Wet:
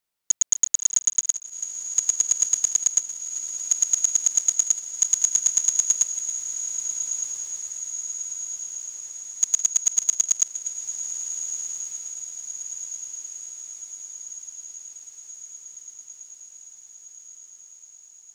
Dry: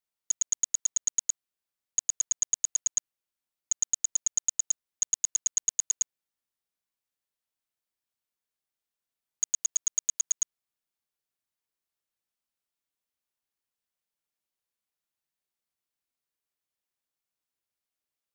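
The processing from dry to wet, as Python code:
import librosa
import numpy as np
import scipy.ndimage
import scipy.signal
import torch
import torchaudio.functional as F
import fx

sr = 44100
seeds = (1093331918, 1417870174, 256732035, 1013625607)

y = fx.reverse_delay_fb(x, sr, ms=244, feedback_pct=41, wet_db=-12.5)
y = fx.echo_diffused(y, sr, ms=1450, feedback_pct=66, wet_db=-8.0)
y = F.gain(torch.from_numpy(y), 7.0).numpy()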